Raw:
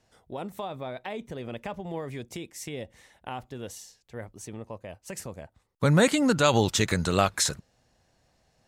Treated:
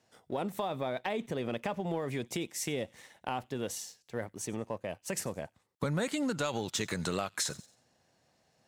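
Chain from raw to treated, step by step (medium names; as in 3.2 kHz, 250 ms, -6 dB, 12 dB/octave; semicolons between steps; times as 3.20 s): high-pass 130 Hz 12 dB/octave; feedback echo behind a high-pass 91 ms, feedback 34%, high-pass 2.5 kHz, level -22 dB; compression 16:1, threshold -32 dBFS, peak gain reduction 17 dB; waveshaping leveller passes 1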